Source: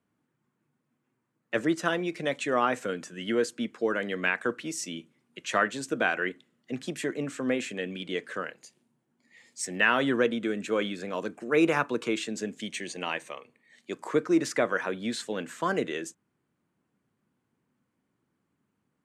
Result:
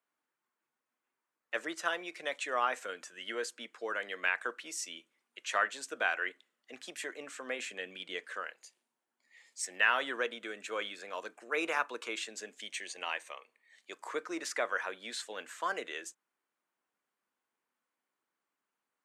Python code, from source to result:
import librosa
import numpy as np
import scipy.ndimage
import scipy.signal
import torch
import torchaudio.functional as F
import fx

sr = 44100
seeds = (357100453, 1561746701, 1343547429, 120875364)

y = fx.peak_eq(x, sr, hz=64.0, db=13.5, octaves=2.4, at=(7.59, 8.25))
y = scipy.signal.sosfilt(scipy.signal.butter(2, 700.0, 'highpass', fs=sr, output='sos'), y)
y = y * 10.0 ** (-3.5 / 20.0)